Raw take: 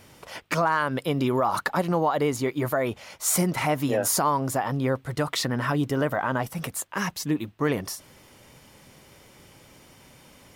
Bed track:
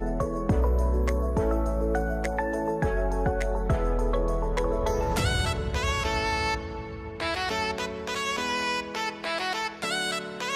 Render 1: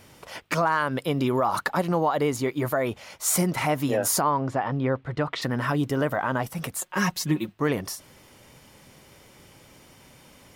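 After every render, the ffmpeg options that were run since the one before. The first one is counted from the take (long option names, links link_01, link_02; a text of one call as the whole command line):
ffmpeg -i in.wav -filter_complex "[0:a]asplit=3[link_01][link_02][link_03];[link_01]afade=type=out:start_time=4.2:duration=0.02[link_04];[link_02]lowpass=3100,afade=type=in:start_time=4.2:duration=0.02,afade=type=out:start_time=5.41:duration=0.02[link_05];[link_03]afade=type=in:start_time=5.41:duration=0.02[link_06];[link_04][link_05][link_06]amix=inputs=3:normalize=0,asettb=1/sr,asplit=3[link_07][link_08][link_09];[link_07]atrim=end=6.814[link_10];[link_08]atrim=start=6.81:end=7.53,asetpts=PTS-STARTPTS,afade=type=in:duration=0.004:curve=qsin,afade=type=out:start_time=0.716:duration=0.004:curve=qsin,aecho=1:1:5.5:0.91,atrim=end_sample=31752[link_11];[link_09]atrim=start=7.526[link_12];[link_10][link_11]acrossfade=duration=0.004:curve1=hsin:curve2=qsin[link_13];[link_13][link_12]acrossfade=duration=0.004:curve1=qsin:curve2=hsin" out.wav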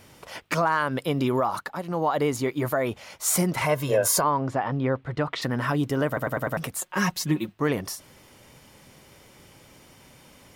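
ffmpeg -i in.wav -filter_complex "[0:a]asettb=1/sr,asplit=3[link_01][link_02][link_03];[link_01]atrim=end=3.614[link_04];[link_02]atrim=start=3.61:end=4.24,asetpts=PTS-STARTPTS,afade=type=in:duration=0.004:curve=qsin,afade=type=out:start_time=0.626:duration=0.004:curve=qsin,aecho=1:1:1.9:0.65,atrim=end_sample=27783[link_05];[link_03]atrim=start=4.236[link_06];[link_04][link_05]acrossfade=duration=0.004:curve1=hsin:curve2=qsin[link_07];[link_07][link_06]acrossfade=duration=0.004:curve1=qsin:curve2=hsin,asplit=8[link_08][link_09][link_10][link_11][link_12][link_13][link_14][link_15];[link_08]atrim=end=1.64,asetpts=PTS-STARTPTS,afade=type=out:start_time=1.4:duration=0.24:silence=0.398107[link_16];[link_09]atrim=start=1.64:end=1.86,asetpts=PTS-STARTPTS,volume=-8dB[link_17];[link_10]atrim=start=1.86:end=6.172,asetpts=PTS-STARTPTS,afade=type=in:duration=0.24:silence=0.398107[link_18];[link_11]atrim=start=6.068:end=6.172[link_19];[link_12]atrim=start=6.068:end=6.172[link_20];[link_13]atrim=start=6.068:end=6.172[link_21];[link_14]atrim=start=6.068:end=6.172[link_22];[link_15]atrim=start=6.568[link_23];[link_16][link_17][link_18]concat=n=3:v=0:a=1[link_24];[link_24][link_19]acrossfade=duration=0.004:curve1=hsin:curve2=hsin[link_25];[link_25][link_20]acrossfade=duration=0.004:curve1=hsin:curve2=hsin[link_26];[link_26][link_21]acrossfade=duration=0.004:curve1=hsin:curve2=hsin[link_27];[link_27][link_22]acrossfade=duration=0.004:curve1=hsin:curve2=hsin[link_28];[link_28][link_23]acrossfade=duration=0.004:curve1=hsin:curve2=hsin" out.wav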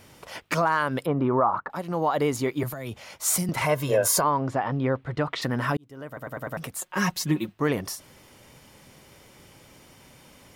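ffmpeg -i in.wav -filter_complex "[0:a]asettb=1/sr,asplit=3[link_01][link_02][link_03];[link_01]atrim=end=1.064[link_04];[link_02]atrim=start=1.06:end=1.7,asetpts=PTS-STARTPTS,afade=type=in:duration=0.004:curve=qsin,afade=type=out:start_time=0.636:duration=0.004:curve=qsin,lowpass=frequency=1200:width_type=q:width=1.6[link_05];[link_03]atrim=start=1.696[link_06];[link_04][link_05]acrossfade=duration=0.004:curve1=hsin:curve2=qsin[link_07];[link_07][link_06]acrossfade=duration=0.004:curve1=qsin:curve2=hsin,asettb=1/sr,asplit=3[link_08][link_09][link_10];[link_08]atrim=end=2.634[link_11];[link_09]atrim=start=2.63:end=3.49,asetpts=PTS-STARTPTS,afade=type=in:duration=0.004:curve=qsin,afade=type=out:start_time=0.856:duration=0.004:curve=qsin,acrossover=split=190|3000[link_12][link_13][link_14];[link_13]acompressor=threshold=-36dB:ratio=6:attack=3.2:release=140:knee=2.83:detection=peak[link_15];[link_12][link_15][link_14]amix=inputs=3:normalize=0[link_16];[link_10]atrim=start=3.486[link_17];[link_11][link_16]acrossfade=duration=0.004:curve1=hsin:curve2=qsin[link_18];[link_18][link_17]acrossfade=duration=0.004:curve1=qsin:curve2=hsin,asplit=2[link_19][link_20];[link_19]atrim=end=5.77,asetpts=PTS-STARTPTS,afade=type=out:start_time=5.766:duration=0.004:curve=hsin[link_21];[link_20]atrim=start=5.77,asetpts=PTS-STARTPTS,afade=type=in:duration=1.34[link_22];[link_21][link_22]concat=n=2:v=0:a=1" out.wav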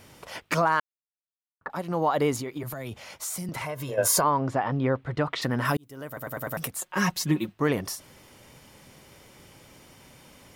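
ffmpeg -i in.wav -filter_complex "[0:a]asplit=3[link_01][link_02][link_03];[link_01]afade=type=out:start_time=2.38:duration=0.02[link_04];[link_02]acompressor=threshold=-30dB:ratio=6:attack=3.2:release=140:knee=1:detection=peak,afade=type=in:start_time=2.38:duration=0.02,afade=type=out:start_time=3.97:duration=0.02[link_05];[link_03]afade=type=in:start_time=3.97:duration=0.02[link_06];[link_04][link_05][link_06]amix=inputs=3:normalize=0,asettb=1/sr,asplit=3[link_07][link_08][link_09];[link_07]atrim=end=5.654[link_10];[link_08]atrim=start=5.65:end=6.68,asetpts=PTS-STARTPTS,afade=type=in:duration=0.004:curve=qsin,afade=type=out:start_time=1.026:duration=0.004:curve=qsin,aemphasis=mode=production:type=50kf[link_11];[link_09]atrim=start=6.676[link_12];[link_10][link_11]acrossfade=duration=0.004:curve1=hsin:curve2=qsin[link_13];[link_13][link_12]acrossfade=duration=0.004:curve1=qsin:curve2=hsin,asplit=3[link_14][link_15][link_16];[link_14]atrim=end=0.8,asetpts=PTS-STARTPTS,afade=type=out:start_time=0.796:duration=0.004:curve=hsin[link_17];[link_15]atrim=start=0.8:end=1.61,asetpts=PTS-STARTPTS,volume=0[link_18];[link_16]atrim=start=1.61,asetpts=PTS-STARTPTS,afade=type=in:duration=0.004:curve=hsin[link_19];[link_17][link_18][link_19]concat=n=3:v=0:a=1" out.wav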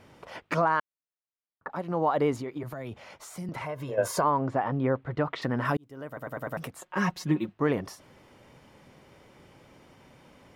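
ffmpeg -i in.wav -af "lowpass=frequency=1600:poles=1,lowshelf=frequency=130:gain=-5" out.wav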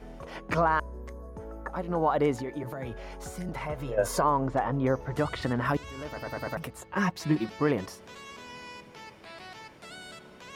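ffmpeg -i in.wav -i bed.wav -filter_complex "[1:a]volume=-16.5dB[link_01];[0:a][link_01]amix=inputs=2:normalize=0" out.wav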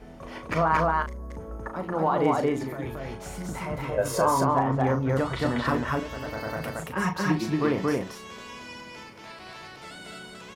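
ffmpeg -i in.wav -filter_complex "[0:a]asplit=2[link_01][link_02];[link_02]adelay=37,volume=-8dB[link_03];[link_01][link_03]amix=inputs=2:normalize=0,aecho=1:1:37.9|227.4:0.282|0.891" out.wav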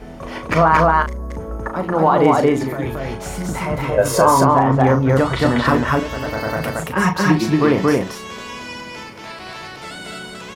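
ffmpeg -i in.wav -af "volume=10dB,alimiter=limit=-2dB:level=0:latency=1" out.wav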